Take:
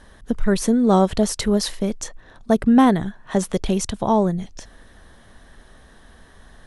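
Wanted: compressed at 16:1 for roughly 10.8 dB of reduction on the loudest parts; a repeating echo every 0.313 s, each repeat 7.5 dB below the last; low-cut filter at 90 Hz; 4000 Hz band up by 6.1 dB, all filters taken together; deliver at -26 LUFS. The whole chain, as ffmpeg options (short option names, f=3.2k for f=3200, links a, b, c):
-af "highpass=90,equalizer=f=4k:t=o:g=7.5,acompressor=threshold=-21dB:ratio=16,aecho=1:1:313|626|939|1252|1565:0.422|0.177|0.0744|0.0312|0.0131,volume=1dB"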